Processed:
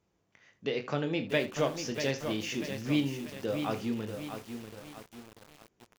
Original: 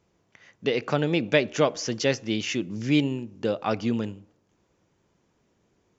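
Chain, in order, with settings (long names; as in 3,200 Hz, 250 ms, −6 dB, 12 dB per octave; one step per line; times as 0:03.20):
ambience of single reflections 21 ms −9.5 dB, 37 ms −12 dB, 78 ms −15 dB
feedback echo at a low word length 641 ms, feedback 55%, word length 6 bits, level −7 dB
level −8 dB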